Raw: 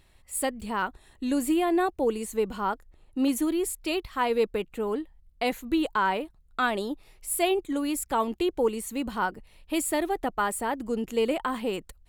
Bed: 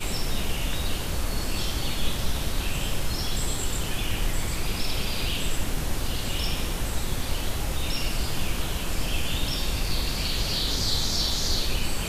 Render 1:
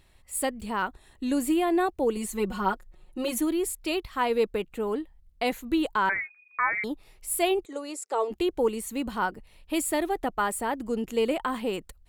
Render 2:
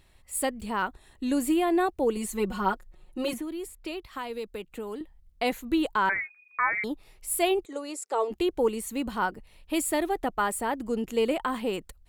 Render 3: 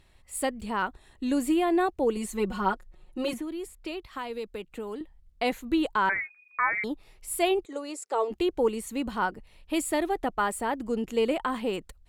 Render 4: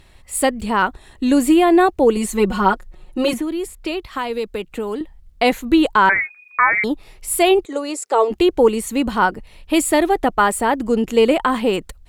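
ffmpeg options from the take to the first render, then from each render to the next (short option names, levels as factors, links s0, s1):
-filter_complex "[0:a]asettb=1/sr,asplit=3[s0][s1][s2];[s0]atrim=end=2.164[s3];[s1]atrim=start=2.16:end=3.4,asetpts=PTS-STARTPTS,afade=t=in:d=0.004:c=qsin,afade=t=out:st=1.236:d=0.004:c=qsin,aecho=1:1:5.5:0.85,atrim=end_sample=54684[s4];[s2]atrim=start=3.396[s5];[s3][s4]acrossfade=d=0.004:c1=hsin:c2=qsin[s6];[s6][s5]acrossfade=d=0.004:c1=qsin:c2=hsin,asettb=1/sr,asplit=3[s7][s8][s9];[s7]atrim=end=6.094[s10];[s8]atrim=start=6.09:end=6.84,asetpts=PTS-STARTPTS,afade=t=in:d=0.004:c=qsin,afade=t=out:st=0.746:d=0.004:c=qsin,lowpass=f=2100:t=q:w=0.5098,lowpass=f=2100:t=q:w=0.6013,lowpass=f=2100:t=q:w=0.9,lowpass=f=2100:t=q:w=2.563,afreqshift=-2500[s11];[s9]atrim=start=6.836[s12];[s10][s11]acrossfade=d=0.004:c1=hsin:c2=qsin[s13];[s13][s12]acrossfade=d=0.004:c1=qsin:c2=hsin,asplit=3[s14][s15][s16];[s14]afade=t=out:st=7.64:d=0.02[s17];[s15]highpass=f=410:w=0.5412,highpass=f=410:w=1.3066,equalizer=f=420:t=q:w=4:g=9,equalizer=f=1000:t=q:w=4:g=-5,equalizer=f=1600:t=q:w=4:g=-8,equalizer=f=2300:t=q:w=4:g=-6,equalizer=f=3300:t=q:w=4:g=-9,lowpass=f=8400:w=0.5412,lowpass=f=8400:w=1.3066,afade=t=in:st=7.64:d=0.02,afade=t=out:st=8.3:d=0.02[s18];[s16]afade=t=in:st=8.3:d=0.02[s19];[s17][s18][s19]amix=inputs=3:normalize=0"
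-filter_complex "[0:a]asettb=1/sr,asplit=3[s0][s1][s2];[s0]atrim=end=3.334[s3];[s1]atrim=start=3.33:end=5.01,asetpts=PTS-STARTPTS,afade=t=in:d=0.004:c=qsin,afade=t=out:st=1.676:d=0.004:c=qsin,acrossover=split=170|3000[s4][s5][s6];[s4]acompressor=threshold=0.00282:ratio=4[s7];[s5]acompressor=threshold=0.0178:ratio=4[s8];[s6]acompressor=threshold=0.00447:ratio=4[s9];[s7][s8][s9]amix=inputs=3:normalize=0[s10];[s2]atrim=start=5.006[s11];[s3][s10]acrossfade=d=0.004:c1=hsin:c2=qsin[s12];[s12][s11]acrossfade=d=0.004:c1=qsin:c2=hsin"
-af "highshelf=f=12000:g=-10.5"
-af "volume=3.76,alimiter=limit=0.708:level=0:latency=1"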